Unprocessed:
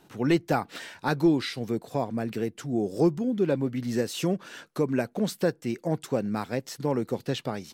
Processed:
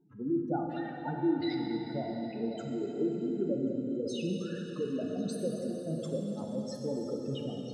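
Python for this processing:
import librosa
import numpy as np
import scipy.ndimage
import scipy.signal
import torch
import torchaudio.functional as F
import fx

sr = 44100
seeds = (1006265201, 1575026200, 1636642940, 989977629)

p1 = fx.spec_expand(x, sr, power=3.6)
p2 = fx.peak_eq(p1, sr, hz=9800.0, db=9.0, octaves=0.26)
p3 = p2 + fx.echo_stepped(p2, sr, ms=272, hz=240.0, octaves=1.4, feedback_pct=70, wet_db=-6.5, dry=0)
p4 = fx.rev_plate(p3, sr, seeds[0], rt60_s=4.2, hf_ratio=1.0, predelay_ms=0, drr_db=0.0)
y = p4 * 10.0 ** (-9.0 / 20.0)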